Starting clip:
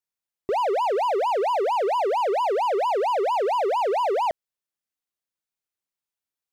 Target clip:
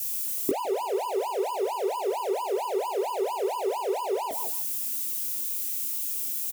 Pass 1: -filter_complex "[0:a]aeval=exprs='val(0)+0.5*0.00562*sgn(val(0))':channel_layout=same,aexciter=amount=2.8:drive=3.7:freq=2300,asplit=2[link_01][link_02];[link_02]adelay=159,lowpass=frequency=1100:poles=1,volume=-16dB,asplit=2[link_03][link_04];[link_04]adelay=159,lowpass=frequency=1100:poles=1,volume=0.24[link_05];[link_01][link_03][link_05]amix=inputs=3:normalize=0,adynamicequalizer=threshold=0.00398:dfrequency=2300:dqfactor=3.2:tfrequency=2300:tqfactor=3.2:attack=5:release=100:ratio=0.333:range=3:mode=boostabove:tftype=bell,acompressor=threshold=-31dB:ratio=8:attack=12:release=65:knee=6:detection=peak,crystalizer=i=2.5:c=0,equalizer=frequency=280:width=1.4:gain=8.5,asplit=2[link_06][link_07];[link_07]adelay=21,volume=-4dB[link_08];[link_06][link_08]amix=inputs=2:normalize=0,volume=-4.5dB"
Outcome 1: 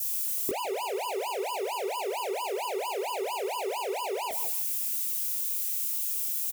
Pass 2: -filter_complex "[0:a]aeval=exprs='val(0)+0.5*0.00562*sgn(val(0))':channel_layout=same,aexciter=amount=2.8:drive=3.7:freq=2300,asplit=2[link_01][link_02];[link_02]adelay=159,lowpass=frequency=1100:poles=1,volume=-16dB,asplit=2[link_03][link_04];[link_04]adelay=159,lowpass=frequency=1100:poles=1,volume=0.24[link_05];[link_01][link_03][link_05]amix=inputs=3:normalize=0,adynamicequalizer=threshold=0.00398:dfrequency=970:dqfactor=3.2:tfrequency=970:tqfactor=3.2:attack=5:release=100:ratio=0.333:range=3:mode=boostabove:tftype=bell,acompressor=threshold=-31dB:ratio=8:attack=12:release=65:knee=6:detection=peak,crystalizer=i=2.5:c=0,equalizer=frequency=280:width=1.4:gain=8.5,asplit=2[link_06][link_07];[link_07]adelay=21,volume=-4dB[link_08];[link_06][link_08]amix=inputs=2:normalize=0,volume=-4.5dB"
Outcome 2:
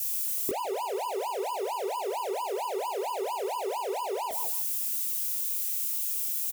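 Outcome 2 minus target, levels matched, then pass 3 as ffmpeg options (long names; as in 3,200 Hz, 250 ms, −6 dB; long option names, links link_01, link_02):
250 Hz band −5.0 dB
-filter_complex "[0:a]aeval=exprs='val(0)+0.5*0.00562*sgn(val(0))':channel_layout=same,aexciter=amount=2.8:drive=3.7:freq=2300,asplit=2[link_01][link_02];[link_02]adelay=159,lowpass=frequency=1100:poles=1,volume=-16dB,asplit=2[link_03][link_04];[link_04]adelay=159,lowpass=frequency=1100:poles=1,volume=0.24[link_05];[link_01][link_03][link_05]amix=inputs=3:normalize=0,adynamicequalizer=threshold=0.00398:dfrequency=970:dqfactor=3.2:tfrequency=970:tqfactor=3.2:attack=5:release=100:ratio=0.333:range=3:mode=boostabove:tftype=bell,acompressor=threshold=-31dB:ratio=8:attack=12:release=65:knee=6:detection=peak,crystalizer=i=2.5:c=0,equalizer=frequency=280:width=1.4:gain=19.5,asplit=2[link_06][link_07];[link_07]adelay=21,volume=-4dB[link_08];[link_06][link_08]amix=inputs=2:normalize=0,volume=-4.5dB"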